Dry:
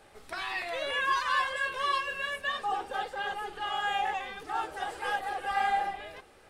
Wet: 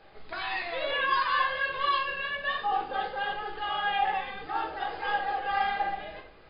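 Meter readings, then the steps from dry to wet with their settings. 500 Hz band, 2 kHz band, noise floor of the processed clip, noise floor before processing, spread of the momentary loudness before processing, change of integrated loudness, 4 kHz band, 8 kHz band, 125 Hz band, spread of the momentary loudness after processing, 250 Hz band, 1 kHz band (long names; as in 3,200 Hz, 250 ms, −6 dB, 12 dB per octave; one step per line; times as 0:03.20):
+2.0 dB, +1.5 dB, −52 dBFS, −57 dBFS, 8 LU, +2.0 dB, +1.5 dB, below −30 dB, can't be measured, 8 LU, +2.5 dB, +2.0 dB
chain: linear-phase brick-wall low-pass 5,100 Hz
rectangular room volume 140 cubic metres, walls mixed, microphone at 0.63 metres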